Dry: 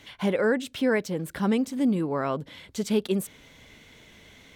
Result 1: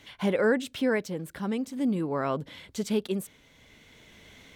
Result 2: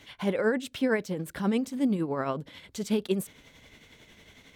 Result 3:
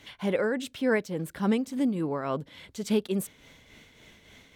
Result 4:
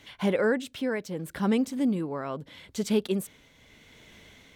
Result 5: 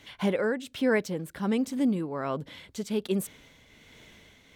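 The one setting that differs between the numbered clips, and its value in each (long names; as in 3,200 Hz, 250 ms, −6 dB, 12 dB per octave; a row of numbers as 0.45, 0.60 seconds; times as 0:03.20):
shaped tremolo, speed: 0.51, 11, 3.5, 0.78, 1.3 Hertz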